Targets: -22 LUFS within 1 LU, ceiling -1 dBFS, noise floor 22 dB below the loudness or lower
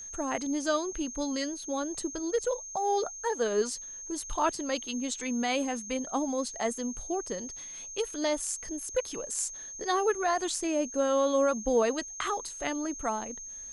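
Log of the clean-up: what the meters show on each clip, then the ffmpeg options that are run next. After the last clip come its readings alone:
steady tone 6400 Hz; tone level -40 dBFS; loudness -31.0 LUFS; peak -14.5 dBFS; loudness target -22.0 LUFS
-> -af "bandreject=f=6.4k:w=30"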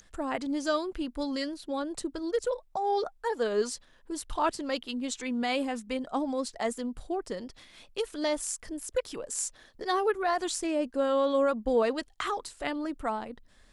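steady tone none; loudness -31.5 LUFS; peak -15.0 dBFS; loudness target -22.0 LUFS
-> -af "volume=9.5dB"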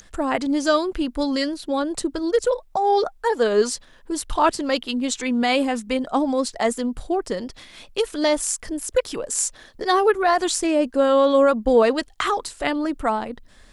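loudness -22.0 LUFS; peak -5.5 dBFS; noise floor -51 dBFS

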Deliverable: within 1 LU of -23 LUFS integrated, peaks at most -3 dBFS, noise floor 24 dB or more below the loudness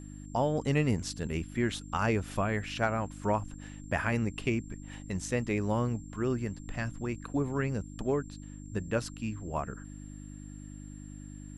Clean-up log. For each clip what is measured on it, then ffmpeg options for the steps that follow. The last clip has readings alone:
hum 50 Hz; harmonics up to 300 Hz; hum level -42 dBFS; steady tone 7400 Hz; tone level -56 dBFS; loudness -32.5 LUFS; peak -14.0 dBFS; loudness target -23.0 LUFS
-> -af "bandreject=f=50:t=h:w=4,bandreject=f=100:t=h:w=4,bandreject=f=150:t=h:w=4,bandreject=f=200:t=h:w=4,bandreject=f=250:t=h:w=4,bandreject=f=300:t=h:w=4"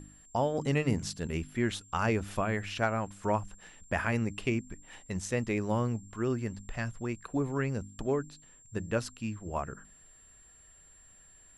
hum none; steady tone 7400 Hz; tone level -56 dBFS
-> -af "bandreject=f=7.4k:w=30"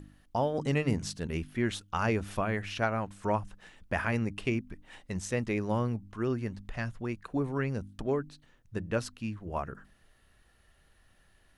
steady tone none; loudness -33.0 LUFS; peak -14.5 dBFS; loudness target -23.0 LUFS
-> -af "volume=10dB"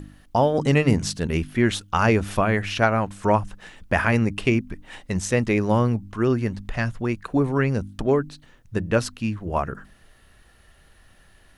loudness -23.0 LUFS; peak -4.5 dBFS; noise floor -55 dBFS

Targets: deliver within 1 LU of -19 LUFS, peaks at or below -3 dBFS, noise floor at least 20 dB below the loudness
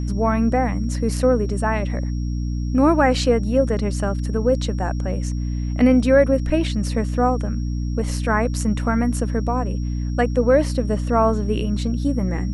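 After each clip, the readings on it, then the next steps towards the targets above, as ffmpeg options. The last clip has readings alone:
hum 60 Hz; harmonics up to 300 Hz; hum level -21 dBFS; steady tone 5600 Hz; tone level -47 dBFS; loudness -20.5 LUFS; peak -3.0 dBFS; loudness target -19.0 LUFS
-> -af "bandreject=f=60:t=h:w=6,bandreject=f=120:t=h:w=6,bandreject=f=180:t=h:w=6,bandreject=f=240:t=h:w=6,bandreject=f=300:t=h:w=6"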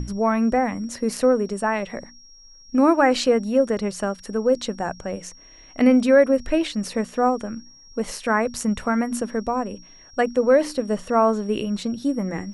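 hum none; steady tone 5600 Hz; tone level -47 dBFS
-> -af "bandreject=f=5.6k:w=30"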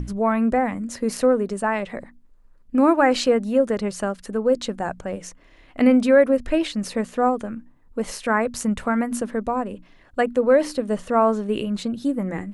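steady tone none; loudness -22.0 LUFS; peak -4.5 dBFS; loudness target -19.0 LUFS
-> -af "volume=3dB,alimiter=limit=-3dB:level=0:latency=1"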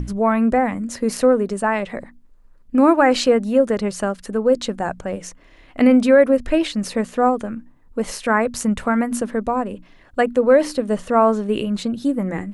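loudness -19.0 LUFS; peak -3.0 dBFS; noise floor -50 dBFS

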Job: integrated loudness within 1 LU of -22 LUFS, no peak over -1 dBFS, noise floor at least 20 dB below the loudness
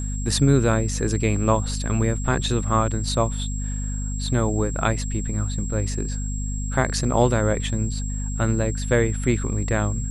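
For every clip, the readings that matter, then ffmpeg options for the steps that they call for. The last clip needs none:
hum 50 Hz; harmonics up to 250 Hz; hum level -25 dBFS; steady tone 7600 Hz; tone level -35 dBFS; loudness -23.5 LUFS; peak -5.0 dBFS; loudness target -22.0 LUFS
-> -af "bandreject=f=50:t=h:w=6,bandreject=f=100:t=h:w=6,bandreject=f=150:t=h:w=6,bandreject=f=200:t=h:w=6,bandreject=f=250:t=h:w=6"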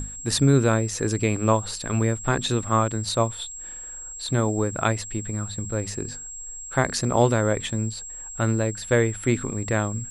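hum none; steady tone 7600 Hz; tone level -35 dBFS
-> -af "bandreject=f=7.6k:w=30"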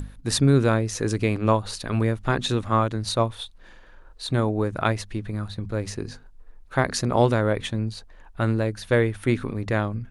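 steady tone none; loudness -24.5 LUFS; peak -6.0 dBFS; loudness target -22.0 LUFS
-> -af "volume=2.5dB"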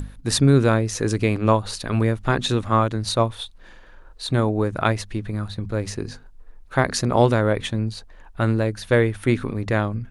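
loudness -22.0 LUFS; peak -3.5 dBFS; noise floor -45 dBFS

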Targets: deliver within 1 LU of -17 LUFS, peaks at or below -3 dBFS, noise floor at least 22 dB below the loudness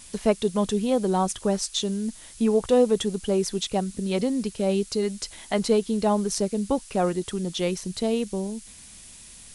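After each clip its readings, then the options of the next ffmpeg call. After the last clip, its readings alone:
noise floor -46 dBFS; noise floor target -48 dBFS; loudness -25.5 LUFS; peak -7.5 dBFS; loudness target -17.0 LUFS
-> -af "afftdn=nr=6:nf=-46"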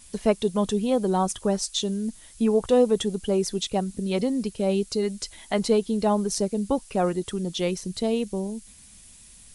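noise floor -50 dBFS; loudness -25.5 LUFS; peak -7.5 dBFS; loudness target -17.0 LUFS
-> -af "volume=8.5dB,alimiter=limit=-3dB:level=0:latency=1"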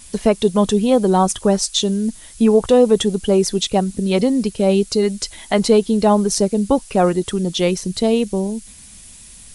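loudness -17.0 LUFS; peak -3.0 dBFS; noise floor -41 dBFS

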